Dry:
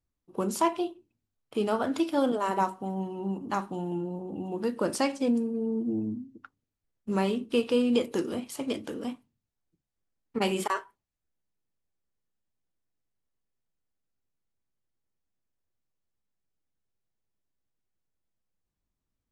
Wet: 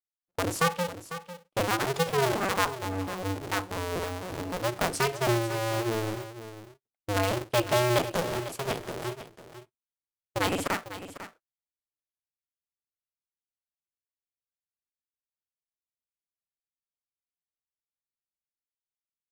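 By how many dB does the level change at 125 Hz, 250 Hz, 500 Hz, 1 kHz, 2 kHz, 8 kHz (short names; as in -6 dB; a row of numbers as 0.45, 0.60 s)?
+7.5, -5.5, +1.0, +2.0, +8.5, +6.0 dB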